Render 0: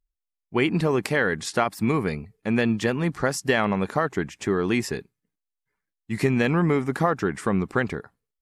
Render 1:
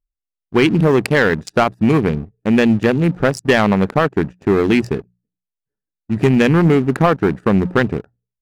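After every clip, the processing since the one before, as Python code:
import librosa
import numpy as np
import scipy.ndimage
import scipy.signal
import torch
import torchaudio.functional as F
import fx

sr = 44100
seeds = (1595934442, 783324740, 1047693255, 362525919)

y = fx.wiener(x, sr, points=41)
y = fx.hum_notches(y, sr, base_hz=60, count=3)
y = fx.leveller(y, sr, passes=2)
y = F.gain(torch.from_numpy(y), 3.5).numpy()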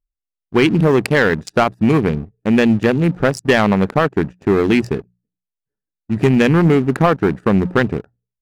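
y = x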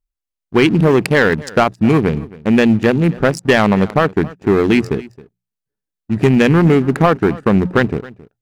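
y = x + 10.0 ** (-20.5 / 20.0) * np.pad(x, (int(269 * sr / 1000.0), 0))[:len(x)]
y = F.gain(torch.from_numpy(y), 1.5).numpy()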